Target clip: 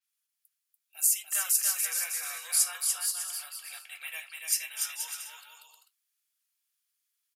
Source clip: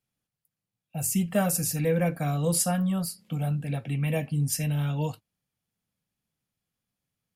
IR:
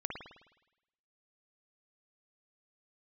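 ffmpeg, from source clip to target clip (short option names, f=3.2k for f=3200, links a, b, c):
-af "highpass=f=1.2k:w=0.5412,highpass=f=1.2k:w=1.3066,highshelf=f=3.9k:g=11.5,aecho=1:1:290|478.5|601|680.7|732.4:0.631|0.398|0.251|0.158|0.1,adynamicequalizer=threshold=0.00447:dfrequency=6300:dqfactor=0.7:tfrequency=6300:tqfactor=0.7:attack=5:release=100:ratio=0.375:range=2.5:mode=cutabove:tftype=highshelf,volume=-4dB"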